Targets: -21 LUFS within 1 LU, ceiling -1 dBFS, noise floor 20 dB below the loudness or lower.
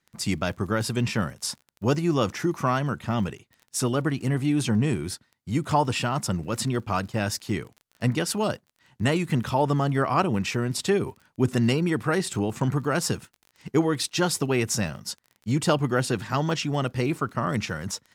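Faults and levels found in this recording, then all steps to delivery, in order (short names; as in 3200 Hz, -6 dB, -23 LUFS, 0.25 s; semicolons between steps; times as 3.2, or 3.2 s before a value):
ticks 26/s; loudness -26.0 LUFS; peak -9.0 dBFS; loudness target -21.0 LUFS
-> de-click; gain +5 dB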